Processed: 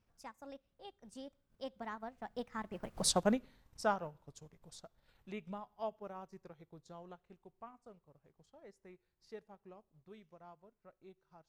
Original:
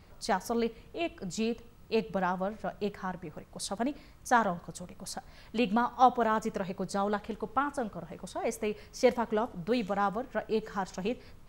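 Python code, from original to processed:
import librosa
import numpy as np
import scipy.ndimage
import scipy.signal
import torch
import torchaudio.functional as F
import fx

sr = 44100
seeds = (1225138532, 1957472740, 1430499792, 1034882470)

y = fx.doppler_pass(x, sr, speed_mps=55, closest_m=8.0, pass_at_s=3.06)
y = fx.transient(y, sr, attack_db=1, sustain_db=-8)
y = y * 10.0 ** (5.5 / 20.0)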